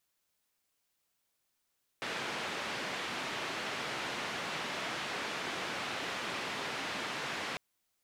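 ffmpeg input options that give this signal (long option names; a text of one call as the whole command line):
ffmpeg -f lavfi -i "anoisesrc=color=white:duration=5.55:sample_rate=44100:seed=1,highpass=frequency=150,lowpass=frequency=2700,volume=-24.2dB" out.wav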